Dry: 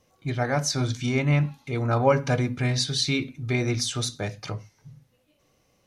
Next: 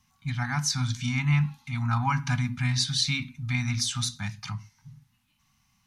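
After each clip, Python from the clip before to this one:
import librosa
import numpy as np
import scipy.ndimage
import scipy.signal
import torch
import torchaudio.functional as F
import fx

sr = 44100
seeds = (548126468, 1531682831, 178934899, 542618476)

y = scipy.signal.sosfilt(scipy.signal.cheby1(3, 1.0, [230.0, 870.0], 'bandstop', fs=sr, output='sos'), x)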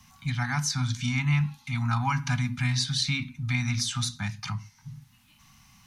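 y = fx.band_squash(x, sr, depth_pct=40)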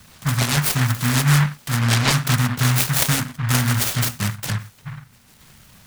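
y = fx.noise_mod_delay(x, sr, seeds[0], noise_hz=1400.0, depth_ms=0.33)
y = y * 10.0 ** (8.5 / 20.0)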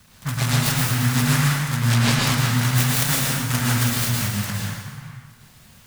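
y = fx.rev_plate(x, sr, seeds[1], rt60_s=1.3, hf_ratio=0.95, predelay_ms=95, drr_db=-3.0)
y = y * 10.0 ** (-5.5 / 20.0)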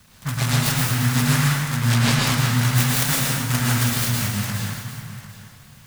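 y = x + 10.0 ** (-15.0 / 20.0) * np.pad(x, (int(745 * sr / 1000.0), 0))[:len(x)]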